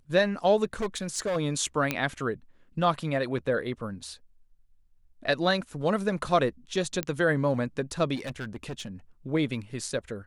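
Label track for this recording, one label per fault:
0.640000	1.370000	clipped -25 dBFS
1.910000	1.910000	pop -11 dBFS
7.030000	7.030000	pop -13 dBFS
8.150000	8.870000	clipped -31 dBFS

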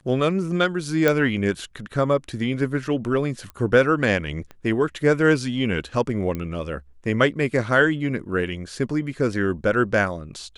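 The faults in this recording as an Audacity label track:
1.080000	1.080000	pop -6 dBFS
3.500000	3.500000	pop -22 dBFS
4.510000	4.510000	pop -25 dBFS
6.350000	6.350000	pop -16 dBFS

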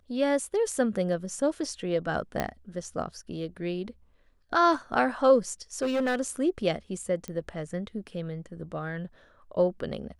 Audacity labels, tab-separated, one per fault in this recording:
2.400000	2.400000	pop -13 dBFS
5.820000	6.160000	clipped -23 dBFS
7.280000	7.280000	pop -23 dBFS

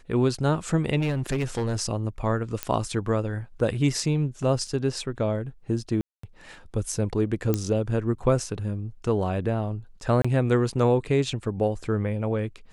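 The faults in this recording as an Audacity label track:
0.990000	1.760000	clipped -21.5 dBFS
2.630000	2.630000	pop -9 dBFS
4.670000	4.670000	dropout 3.1 ms
6.010000	6.230000	dropout 224 ms
7.540000	7.540000	pop -10 dBFS
10.220000	10.240000	dropout 25 ms

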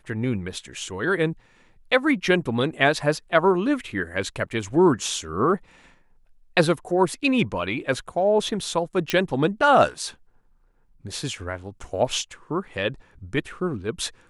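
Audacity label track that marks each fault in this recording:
9.100000	9.100000	pop -8 dBFS

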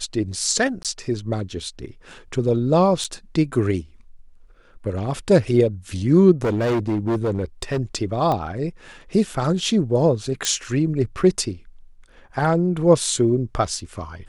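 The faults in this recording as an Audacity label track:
0.830000	0.850000	dropout 17 ms
3.040000	3.050000	dropout 6.2 ms
6.440000	7.800000	clipped -17.5 dBFS
8.320000	8.320000	pop -12 dBFS
10.450000	10.450000	pop -6 dBFS

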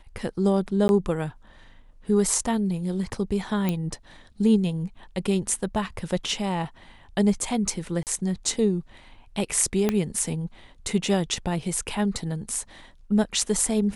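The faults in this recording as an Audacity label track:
0.880000	0.890000	dropout 11 ms
3.690000	3.690000	pop -12 dBFS
8.030000	8.070000	dropout 38 ms
9.890000	9.890000	pop -9 dBFS

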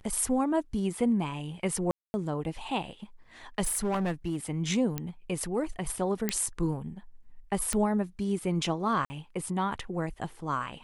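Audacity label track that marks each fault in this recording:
1.910000	2.140000	dropout 230 ms
3.630000	4.360000	clipped -25.5 dBFS
4.980000	4.980000	pop -16 dBFS
6.290000	6.290000	pop -11 dBFS
7.730000	7.730000	pop -15 dBFS
9.050000	9.100000	dropout 50 ms

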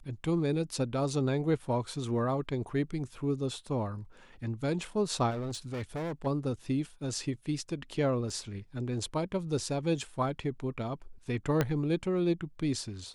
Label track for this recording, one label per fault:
5.300000	6.270000	clipped -32.5 dBFS
8.300000	8.300000	dropout 2.7 ms
11.610000	11.610000	pop -13 dBFS

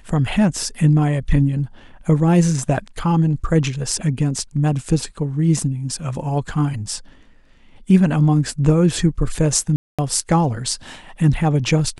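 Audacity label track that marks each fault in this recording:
9.760000	9.990000	dropout 226 ms

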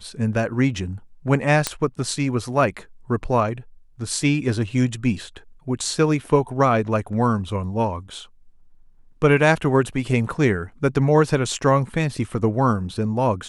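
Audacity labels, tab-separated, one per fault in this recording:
1.670000	1.670000	pop -5 dBFS

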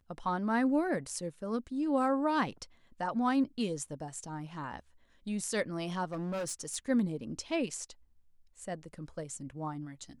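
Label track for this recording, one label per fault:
6.120000	6.760000	clipped -32.5 dBFS

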